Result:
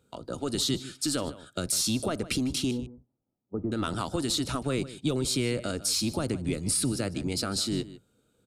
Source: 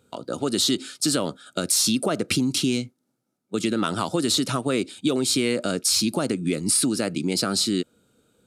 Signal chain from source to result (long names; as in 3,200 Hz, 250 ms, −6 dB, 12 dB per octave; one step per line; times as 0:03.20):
sub-octave generator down 1 octave, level −3 dB
0:02.71–0:03.72: Butterworth low-pass 1,100 Hz 36 dB per octave
slap from a distant wall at 26 metres, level −16 dB
level −6.5 dB